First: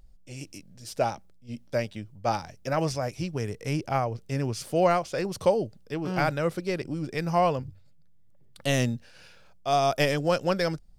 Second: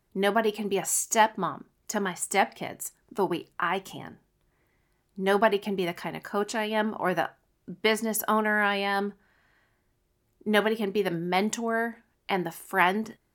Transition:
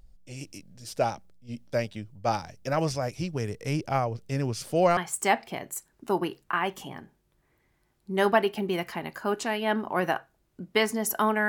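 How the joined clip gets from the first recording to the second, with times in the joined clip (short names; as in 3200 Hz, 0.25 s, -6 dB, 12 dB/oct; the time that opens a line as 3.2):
first
4.97 switch to second from 2.06 s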